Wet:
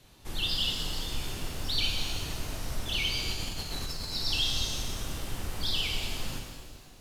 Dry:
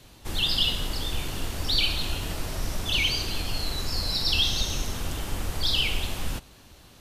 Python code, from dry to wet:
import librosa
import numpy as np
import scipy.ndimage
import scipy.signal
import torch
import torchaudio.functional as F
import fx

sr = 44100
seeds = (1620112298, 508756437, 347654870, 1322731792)

y = fx.over_compress(x, sr, threshold_db=-29.0, ratio=-0.5, at=(3.29, 4.13))
y = fx.rev_shimmer(y, sr, seeds[0], rt60_s=1.6, semitones=7, shimmer_db=-8, drr_db=2.5)
y = F.gain(torch.from_numpy(y), -7.0).numpy()